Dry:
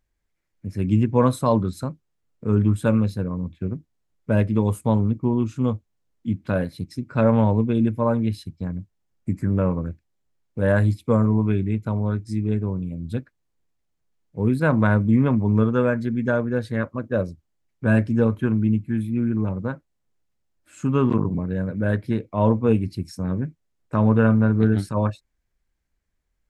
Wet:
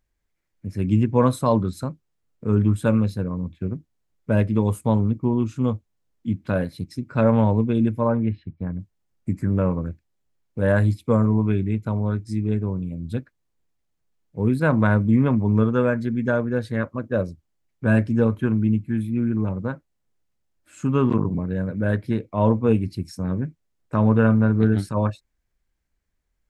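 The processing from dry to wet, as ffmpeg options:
ffmpeg -i in.wav -filter_complex "[0:a]asplit=3[link_01][link_02][link_03];[link_01]afade=type=out:start_time=8.07:duration=0.02[link_04];[link_02]lowpass=frequency=2400:width=0.5412,lowpass=frequency=2400:width=1.3066,afade=type=in:start_time=8.07:duration=0.02,afade=type=out:start_time=8.78:duration=0.02[link_05];[link_03]afade=type=in:start_time=8.78:duration=0.02[link_06];[link_04][link_05][link_06]amix=inputs=3:normalize=0" out.wav

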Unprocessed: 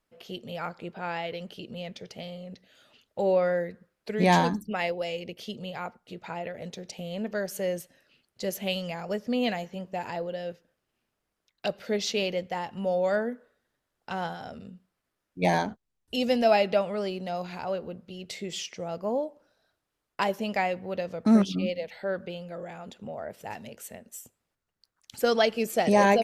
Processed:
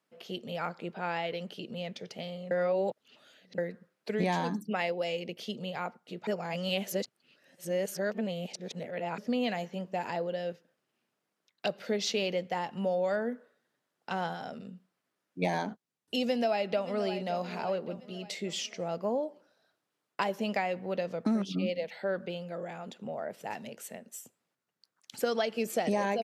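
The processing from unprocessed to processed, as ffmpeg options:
ffmpeg -i in.wav -filter_complex "[0:a]asplit=2[link_01][link_02];[link_02]afade=type=in:start_time=16.19:duration=0.01,afade=type=out:start_time=17.12:duration=0.01,aecho=0:1:570|1140|1710|2280:0.149624|0.0673306|0.0302988|0.0136344[link_03];[link_01][link_03]amix=inputs=2:normalize=0,asplit=5[link_04][link_05][link_06][link_07][link_08];[link_04]atrim=end=2.512[link_09];[link_05]atrim=start=2.508:end=3.582,asetpts=PTS-STARTPTS,areverse[link_10];[link_06]atrim=start=3.578:end=6.272[link_11];[link_07]atrim=start=6.268:end=9.182,asetpts=PTS-STARTPTS,areverse[link_12];[link_08]atrim=start=9.178[link_13];[link_09][link_10]acrossfade=duration=0.004:curve1=hsin:curve2=hsin[link_14];[link_14][link_11]acrossfade=duration=0.004:curve1=hsin:curve2=hsin[link_15];[link_15][link_12]acrossfade=duration=0.004:curve1=hsin:curve2=hsin[link_16];[link_16][link_13]acrossfade=duration=0.004:curve1=hsin:curve2=hsin,highpass=frequency=140:width=0.5412,highpass=frequency=140:width=1.3066,highshelf=frequency=12000:gain=-6.5,acompressor=threshold=-26dB:ratio=6" out.wav

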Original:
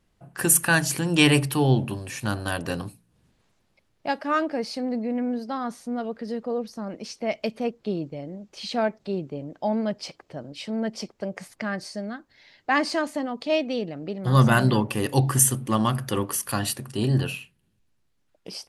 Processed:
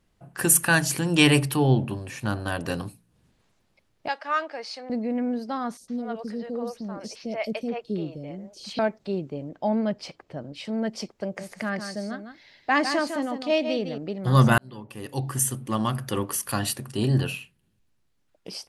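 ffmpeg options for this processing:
ffmpeg -i in.wav -filter_complex "[0:a]asettb=1/sr,asplit=3[link_01][link_02][link_03];[link_01]atrim=end=1.564[link_04];[link_02]atrim=start=1.56:end=2.6,asetpts=PTS-STARTPTS,afade=type=in:duration=0.004:curve=qsin,afade=type=out:start_time=1.036:duration=0.004:curve=qsin,highshelf=frequency=3300:gain=-7[link_05];[link_03]atrim=start=2.596[link_06];[link_04][link_05]acrossfade=duration=0.004:curve1=hsin:curve2=qsin[link_07];[link_07][link_06]acrossfade=duration=0.004:curve1=qsin:curve2=hsin,asettb=1/sr,asplit=3[link_08][link_09][link_10];[link_08]atrim=end=4.084[link_11];[link_09]atrim=start=4.08:end=4.9,asetpts=PTS-STARTPTS,afade=type=in:duration=0.004:curve=qsin,afade=type=out:start_time=0.816:duration=0.004:curve=qsin,highpass=750,lowpass=6400[link_12];[link_10]atrim=start=4.896[link_13];[link_11][link_12]acrossfade=duration=0.004:curve1=hsin:curve2=qsin[link_14];[link_14][link_13]acrossfade=duration=0.004:curve1=qsin:curve2=hsin,asettb=1/sr,asplit=3[link_15][link_16][link_17];[link_15]atrim=end=5.774[link_18];[link_16]atrim=start=5.77:end=8.79,asetpts=PTS-STARTPTS,afade=type=in:duration=0.004:curve=qsin,afade=type=out:start_time=3.016:duration=0.004:curve=qsin,acrossover=split=510|4200[link_19][link_20][link_21];[link_19]adelay=30[link_22];[link_20]adelay=110[link_23];[link_22][link_23][link_21]amix=inputs=3:normalize=0,atrim=end_sample=133182[link_24];[link_17]atrim=start=8.786[link_25];[link_18][link_24]acrossfade=duration=0.004:curve1=hsin:curve2=qsin[link_26];[link_26][link_25]acrossfade=duration=0.004:curve1=qsin:curve2=hsin,asettb=1/sr,asplit=3[link_27][link_28][link_29];[link_27]atrim=end=9.494[link_30];[link_28]atrim=start=9.49:end=10.65,asetpts=PTS-STARTPTS,afade=type=in:duration=0.004:curve=qsin,afade=type=out:start_time=1.156:duration=0.004:curve=qsin,bass=frequency=250:gain=2,treble=frequency=4000:gain=-5[link_31];[link_29]atrim=start=10.646[link_32];[link_30][link_31]acrossfade=duration=0.004:curve1=hsin:curve2=qsin[link_33];[link_33][link_32]acrossfade=duration=0.004:curve1=qsin:curve2=hsin,asettb=1/sr,asplit=3[link_34][link_35][link_36];[link_34]atrim=end=11.234[link_37];[link_35]atrim=start=11.23:end=13.98,asetpts=PTS-STARTPTS,afade=type=in:duration=0.004:curve=qsin,afade=type=out:start_time=2.746:duration=0.004:curve=qsin,aecho=1:1:155:0.398,atrim=end_sample=121275[link_38];[link_36]atrim=start=13.976[link_39];[link_37][link_38]acrossfade=duration=0.004:curve1=hsin:curve2=qsin[link_40];[link_40][link_39]acrossfade=duration=0.004:curve1=qsin:curve2=hsin,asplit=2[link_41][link_42];[link_41]atrim=end=14.58,asetpts=PTS-STARTPTS,afade=type=out:start_time=14.576:duration=0.004:curve=hsin[link_43];[link_42]atrim=start=14.58,asetpts=PTS-STARTPTS,afade=type=in:duration=2.51:curve=qsin[link_44];[link_43][link_44]concat=n=2:v=0:a=1" out.wav

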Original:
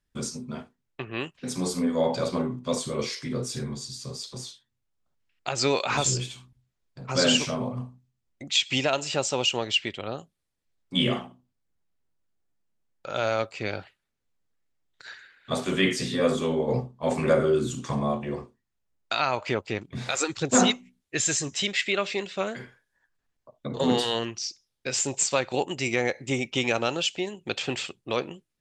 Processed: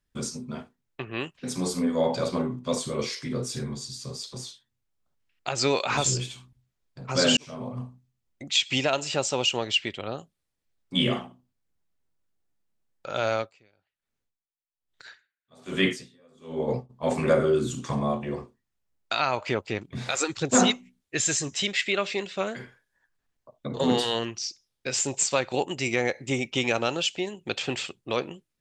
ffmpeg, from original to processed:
ffmpeg -i in.wav -filter_complex "[0:a]asplit=3[link_01][link_02][link_03];[link_01]afade=type=out:start_time=13.31:duration=0.02[link_04];[link_02]aeval=exprs='val(0)*pow(10,-36*(0.5-0.5*cos(2*PI*1.2*n/s))/20)':channel_layout=same,afade=type=in:start_time=13.31:duration=0.02,afade=type=out:start_time=16.89:duration=0.02[link_05];[link_03]afade=type=in:start_time=16.89:duration=0.02[link_06];[link_04][link_05][link_06]amix=inputs=3:normalize=0,asplit=2[link_07][link_08];[link_07]atrim=end=7.37,asetpts=PTS-STARTPTS,afade=type=out:start_time=7.366:duration=0.004:curve=hsin[link_09];[link_08]atrim=start=7.37,asetpts=PTS-STARTPTS,afade=type=in:duration=0.48[link_10];[link_09][link_10]concat=n=2:v=0:a=1" out.wav

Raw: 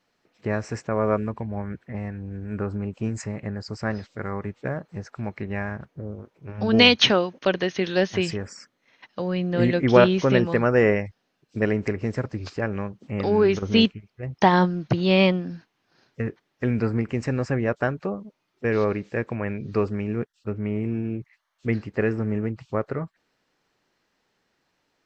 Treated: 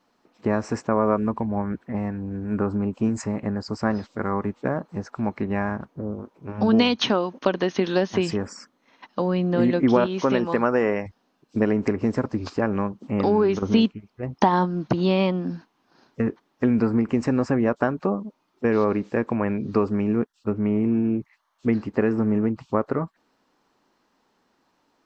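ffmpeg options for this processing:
ffmpeg -i in.wav -filter_complex "[0:a]asettb=1/sr,asplit=3[link_01][link_02][link_03];[link_01]atrim=end=10.064[link_04];[link_02]atrim=start=10.06:end=11.06,asetpts=PTS-STARTPTS,afade=type=in:duration=0.004:curve=qsin,afade=type=out:start_time=0.996:duration=0.004:curve=qsin,lowshelf=frequency=350:gain=-8[link_05];[link_03]atrim=start=11.056[link_06];[link_04][link_05]acrossfade=duration=0.004:curve1=hsin:curve2=qsin[link_07];[link_07][link_06]acrossfade=duration=0.004:curve1=qsin:curve2=hsin,acompressor=threshold=-22dB:ratio=4,equalizer=frequency=125:width_type=o:width=1:gain=-4,equalizer=frequency=250:width_type=o:width=1:gain=8,equalizer=frequency=1000:width_type=o:width=1:gain=8,equalizer=frequency=2000:width_type=o:width=1:gain=-4,volume=1.5dB" out.wav

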